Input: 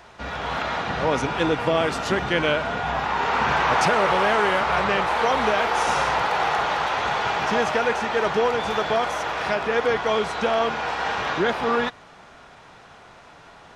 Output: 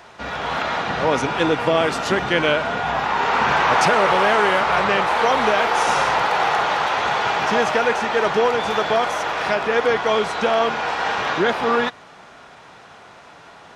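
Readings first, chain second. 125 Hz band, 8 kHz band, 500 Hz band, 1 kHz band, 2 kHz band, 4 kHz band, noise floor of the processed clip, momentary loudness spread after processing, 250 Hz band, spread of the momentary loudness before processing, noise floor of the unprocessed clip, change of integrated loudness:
+0.5 dB, +3.5 dB, +3.0 dB, +3.5 dB, +3.5 dB, +3.5 dB, -45 dBFS, 6 LU, +2.5 dB, 6 LU, -48 dBFS, +3.5 dB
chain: HPF 130 Hz 6 dB/oct; gain +3.5 dB

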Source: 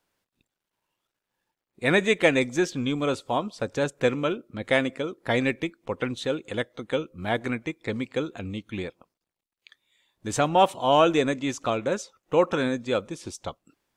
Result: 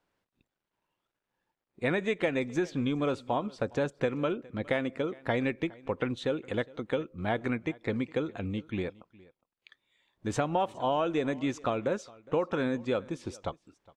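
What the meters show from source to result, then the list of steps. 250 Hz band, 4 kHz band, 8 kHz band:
-3.5 dB, -10.0 dB, -11.5 dB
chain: LPF 2200 Hz 6 dB/oct; compressor 6:1, threshold -25 dBFS, peak gain reduction 11 dB; on a send: echo 0.412 s -23 dB

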